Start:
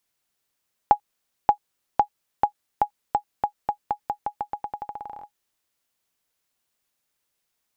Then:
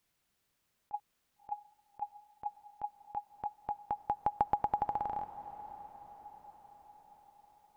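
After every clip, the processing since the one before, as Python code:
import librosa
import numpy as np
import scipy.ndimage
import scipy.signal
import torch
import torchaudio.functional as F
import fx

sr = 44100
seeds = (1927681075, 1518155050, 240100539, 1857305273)

y = fx.bass_treble(x, sr, bass_db=6, treble_db=-4)
y = fx.over_compress(y, sr, threshold_db=-27.0, ratio=-0.5)
y = fx.echo_diffused(y, sr, ms=615, feedback_pct=54, wet_db=-14)
y = y * librosa.db_to_amplitude(-4.5)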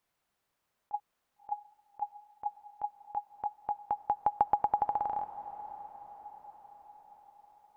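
y = fx.peak_eq(x, sr, hz=850.0, db=8.5, octaves=2.2)
y = y * librosa.db_to_amplitude(-5.0)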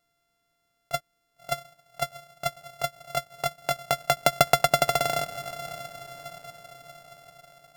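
y = np.r_[np.sort(x[:len(x) // 64 * 64].reshape(-1, 64), axis=1).ravel(), x[len(x) // 64 * 64:]]
y = y + 0.34 * np.pad(y, (int(6.7 * sr / 1000.0), 0))[:len(y)]
y = y * librosa.db_to_amplitude(7.5)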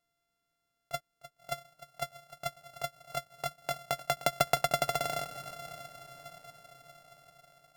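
y = x + 10.0 ** (-15.0 / 20.0) * np.pad(x, (int(304 * sr / 1000.0), 0))[:len(x)]
y = y * librosa.db_to_amplitude(-7.5)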